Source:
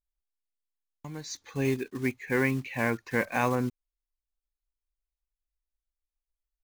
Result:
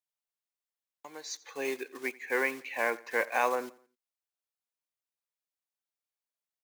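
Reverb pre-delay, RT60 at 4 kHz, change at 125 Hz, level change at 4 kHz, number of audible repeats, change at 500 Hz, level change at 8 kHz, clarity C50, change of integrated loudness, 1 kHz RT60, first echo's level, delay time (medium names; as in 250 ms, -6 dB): no reverb, no reverb, under -30 dB, -0.5 dB, 2, -2.0 dB, -0.5 dB, no reverb, -2.5 dB, no reverb, -21.5 dB, 86 ms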